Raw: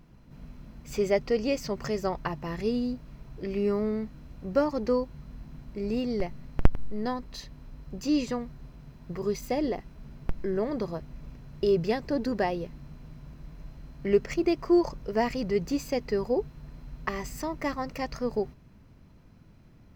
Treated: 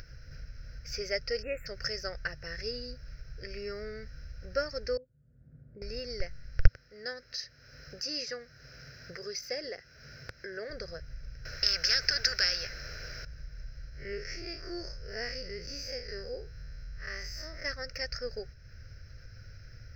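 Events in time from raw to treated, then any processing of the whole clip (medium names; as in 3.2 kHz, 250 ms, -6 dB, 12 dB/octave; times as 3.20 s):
1.42–1.67 s: spectral selection erased 2.8–7 kHz
4.97–5.82 s: ladder band-pass 230 Hz, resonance 25%
6.67–10.70 s: Bessel high-pass 220 Hz
11.45–13.25 s: spectrum-flattening compressor 4:1
13.89–17.65 s: spectral blur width 100 ms
whole clip: FFT filter 110 Hz 0 dB, 190 Hz -22 dB, 330 Hz -19 dB, 520 Hz -4 dB, 1 kHz -27 dB, 1.5 kHz +7 dB, 3.5 kHz -11 dB, 5.3 kHz +14 dB, 8.2 kHz -24 dB, 15 kHz -9 dB; upward compressor, threshold -37 dBFS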